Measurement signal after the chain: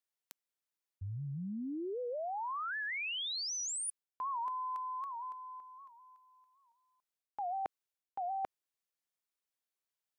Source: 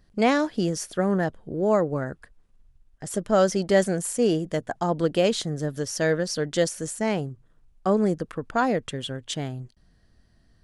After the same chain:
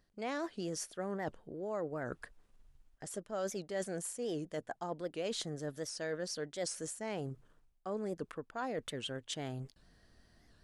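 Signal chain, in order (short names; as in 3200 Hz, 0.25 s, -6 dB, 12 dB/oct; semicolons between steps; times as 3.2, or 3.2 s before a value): tone controls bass -7 dB, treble 0 dB; reverse; compressor 4:1, threshold -40 dBFS; reverse; record warp 78 rpm, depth 160 cents; gain +1 dB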